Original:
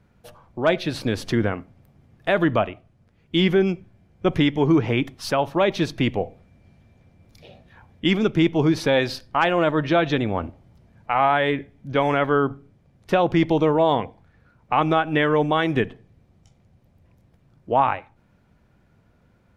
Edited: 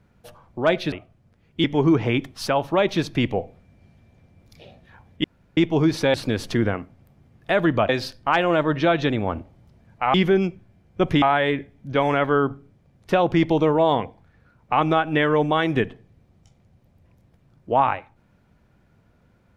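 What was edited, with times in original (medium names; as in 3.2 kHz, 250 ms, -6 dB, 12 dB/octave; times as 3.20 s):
0.92–2.67 s: move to 8.97 s
3.39–4.47 s: move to 11.22 s
8.07–8.40 s: room tone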